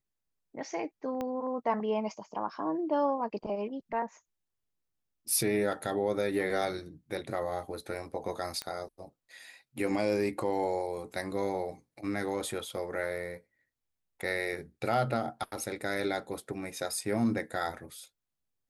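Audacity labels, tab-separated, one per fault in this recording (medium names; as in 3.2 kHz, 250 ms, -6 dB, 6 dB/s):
1.210000	1.210000	pop -22 dBFS
8.620000	8.620000	pop -20 dBFS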